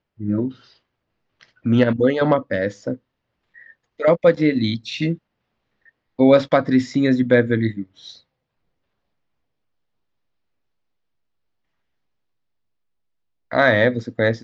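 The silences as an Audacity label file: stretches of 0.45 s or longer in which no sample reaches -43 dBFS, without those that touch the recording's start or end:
0.720000	1.410000	silence
2.970000	3.560000	silence
5.170000	5.880000	silence
8.180000	13.510000	silence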